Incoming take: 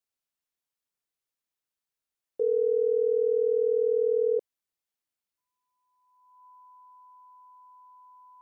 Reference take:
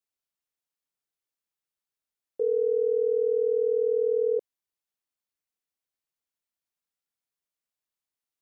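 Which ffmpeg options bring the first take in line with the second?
ffmpeg -i in.wav -af "bandreject=frequency=1000:width=30" out.wav

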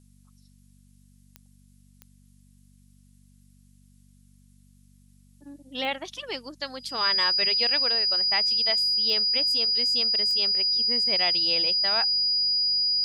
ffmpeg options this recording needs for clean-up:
ffmpeg -i in.wav -af "adeclick=threshold=4,bandreject=frequency=48.2:width_type=h:width=4,bandreject=frequency=96.4:width_type=h:width=4,bandreject=frequency=144.6:width_type=h:width=4,bandreject=frequency=192.8:width_type=h:width=4,bandreject=frequency=241:width_type=h:width=4,bandreject=frequency=4900:width=30,agate=range=-21dB:threshold=-49dB" out.wav

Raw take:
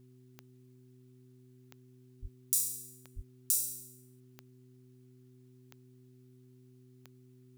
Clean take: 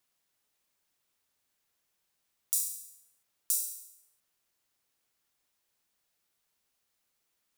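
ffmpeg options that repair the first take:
ffmpeg -i in.wav -filter_complex "[0:a]adeclick=threshold=4,bandreject=frequency=126.3:width_type=h:width=4,bandreject=frequency=252.6:width_type=h:width=4,bandreject=frequency=378.9:width_type=h:width=4,asplit=3[link_01][link_02][link_03];[link_01]afade=type=out:start_time=2.21:duration=0.02[link_04];[link_02]highpass=frequency=140:width=0.5412,highpass=frequency=140:width=1.3066,afade=type=in:start_time=2.21:duration=0.02,afade=type=out:start_time=2.33:duration=0.02[link_05];[link_03]afade=type=in:start_time=2.33:duration=0.02[link_06];[link_04][link_05][link_06]amix=inputs=3:normalize=0,asplit=3[link_07][link_08][link_09];[link_07]afade=type=out:start_time=3.15:duration=0.02[link_10];[link_08]highpass=frequency=140:width=0.5412,highpass=frequency=140:width=1.3066,afade=type=in:start_time=3.15:duration=0.02,afade=type=out:start_time=3.27:duration=0.02[link_11];[link_09]afade=type=in:start_time=3.27:duration=0.02[link_12];[link_10][link_11][link_12]amix=inputs=3:normalize=0" out.wav

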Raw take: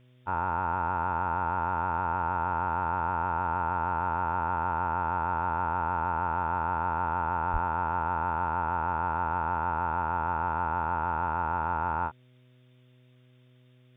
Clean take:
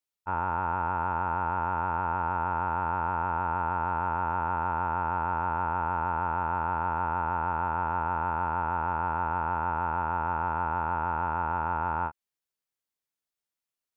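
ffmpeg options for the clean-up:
ffmpeg -i in.wav -filter_complex "[0:a]bandreject=frequency=125.4:width_type=h:width=4,bandreject=frequency=250.8:width_type=h:width=4,bandreject=frequency=376.2:width_type=h:width=4,bandreject=frequency=501.6:width_type=h:width=4,bandreject=frequency=627:width_type=h:width=4,asplit=3[link_01][link_02][link_03];[link_01]afade=type=out:start_time=7.52:duration=0.02[link_04];[link_02]highpass=frequency=140:width=0.5412,highpass=frequency=140:width=1.3066,afade=type=in:start_time=7.52:duration=0.02,afade=type=out:start_time=7.64:duration=0.02[link_05];[link_03]afade=type=in:start_time=7.64:duration=0.02[link_06];[link_04][link_05][link_06]amix=inputs=3:normalize=0,agate=range=-21dB:threshold=-51dB" out.wav

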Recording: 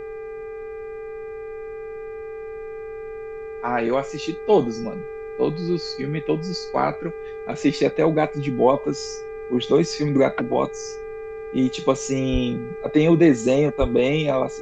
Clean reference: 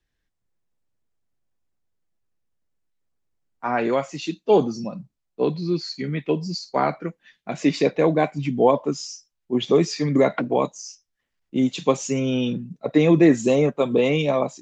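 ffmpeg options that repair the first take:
ffmpeg -i in.wav -filter_complex "[0:a]bandreject=frequency=400.1:width_type=h:width=4,bandreject=frequency=800.2:width_type=h:width=4,bandreject=frequency=1200.3:width_type=h:width=4,bandreject=frequency=1600.4:width_type=h:width=4,bandreject=frequency=2000.5:width_type=h:width=4,bandreject=frequency=2400.6:width_type=h:width=4,bandreject=frequency=440:width=30,asplit=3[link_01][link_02][link_03];[link_01]afade=type=out:start_time=12.32:duration=0.02[link_04];[link_02]highpass=frequency=140:width=0.5412,highpass=frequency=140:width=1.3066,afade=type=in:start_time=12.32:duration=0.02,afade=type=out:start_time=12.44:duration=0.02[link_05];[link_03]afade=type=in:start_time=12.44:duration=0.02[link_06];[link_04][link_05][link_06]amix=inputs=3:normalize=0,asplit=3[link_07][link_08][link_09];[link_07]afade=type=out:start_time=13.8:duration=0.02[link_10];[link_08]highpass=frequency=140:width=0.5412,highpass=frequency=140:width=1.3066,afade=type=in:start_time=13.8:duration=0.02,afade=type=out:start_time=13.92:duration=0.02[link_11];[link_09]afade=type=in:start_time=13.92:duration=0.02[link_12];[link_10][link_11][link_12]amix=inputs=3:normalize=0,agate=range=-21dB:threshold=-26dB" out.wav

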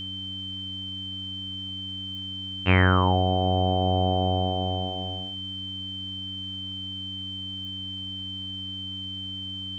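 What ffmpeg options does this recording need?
ffmpeg -i in.wav -af "adeclick=threshold=4,bandreject=frequency=95.1:width_type=h:width=4,bandreject=frequency=190.2:width_type=h:width=4,bandreject=frequency=285.3:width_type=h:width=4,bandreject=frequency=3100:width=30,agate=range=-21dB:threshold=-27dB" out.wav

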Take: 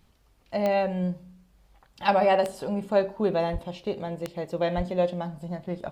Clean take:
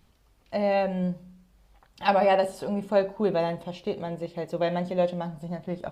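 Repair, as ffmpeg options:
ffmpeg -i in.wav -filter_complex "[0:a]adeclick=threshold=4,asplit=3[link_01][link_02][link_03];[link_01]afade=type=out:start_time=3.52:duration=0.02[link_04];[link_02]highpass=frequency=140:width=0.5412,highpass=frequency=140:width=1.3066,afade=type=in:start_time=3.52:duration=0.02,afade=type=out:start_time=3.64:duration=0.02[link_05];[link_03]afade=type=in:start_time=3.64:duration=0.02[link_06];[link_04][link_05][link_06]amix=inputs=3:normalize=0,asplit=3[link_07][link_08][link_09];[link_07]afade=type=out:start_time=4.76:duration=0.02[link_10];[link_08]highpass=frequency=140:width=0.5412,highpass=frequency=140:width=1.3066,afade=type=in:start_time=4.76:duration=0.02,afade=type=out:start_time=4.88:duration=0.02[link_11];[link_09]afade=type=in:start_time=4.88:duration=0.02[link_12];[link_10][link_11][link_12]amix=inputs=3:normalize=0" out.wav

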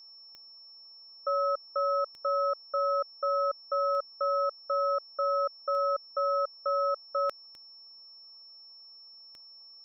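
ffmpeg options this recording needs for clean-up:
ffmpeg -i in.wav -af "adeclick=threshold=4,bandreject=frequency=5400:width=30,afftdn=noise_reduction=25:noise_floor=-52" out.wav

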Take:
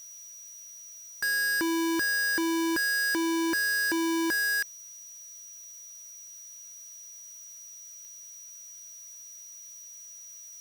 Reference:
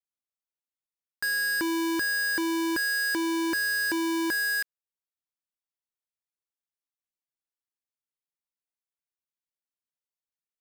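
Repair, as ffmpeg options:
ffmpeg -i in.wav -af "adeclick=threshold=4,bandreject=frequency=5800:width=30,afftdn=noise_reduction=30:noise_floor=-47" out.wav

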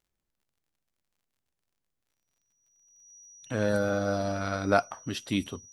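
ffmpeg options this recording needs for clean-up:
ffmpeg -i in.wav -af "adeclick=threshold=4,bandreject=frequency=5800:width=30" out.wav

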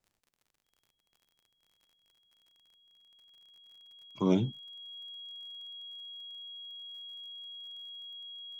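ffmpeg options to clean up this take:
ffmpeg -i in.wav -af "adeclick=threshold=4,bandreject=frequency=3300:width=30" out.wav

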